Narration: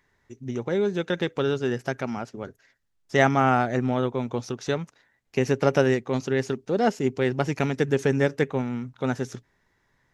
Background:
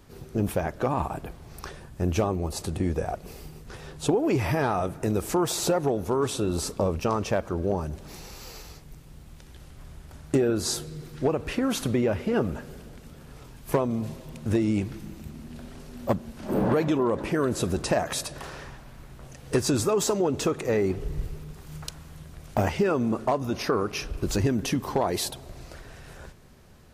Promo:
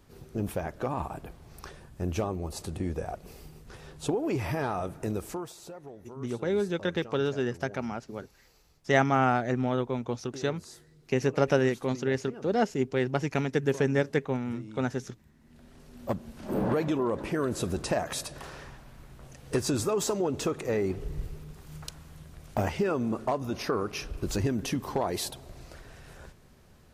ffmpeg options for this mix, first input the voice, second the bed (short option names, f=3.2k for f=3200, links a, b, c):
-filter_complex "[0:a]adelay=5750,volume=-3.5dB[a];[1:a]volume=11dB,afade=t=out:st=5.11:d=0.43:silence=0.177828,afade=t=in:st=15.38:d=0.95:silence=0.149624[b];[a][b]amix=inputs=2:normalize=0"